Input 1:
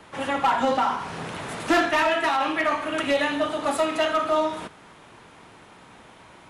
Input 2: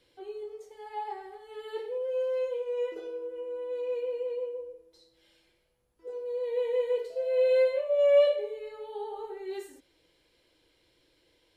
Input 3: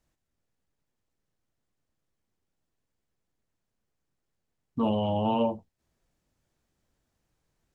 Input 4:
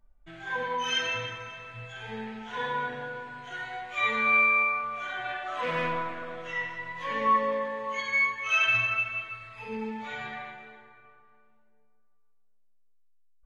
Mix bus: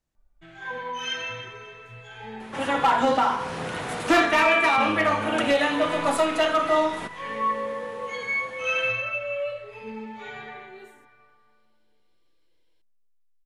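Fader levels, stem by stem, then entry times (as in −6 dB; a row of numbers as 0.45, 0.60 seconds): +1.0, −9.5, −5.5, −2.0 decibels; 2.40, 1.25, 0.00, 0.15 seconds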